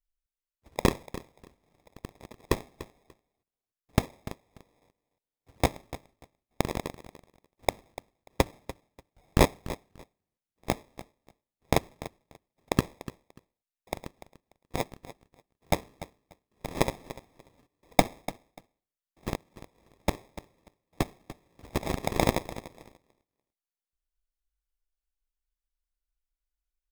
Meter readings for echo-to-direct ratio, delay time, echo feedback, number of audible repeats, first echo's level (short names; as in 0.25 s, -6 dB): -15.5 dB, 0.293 s, 18%, 2, -15.5 dB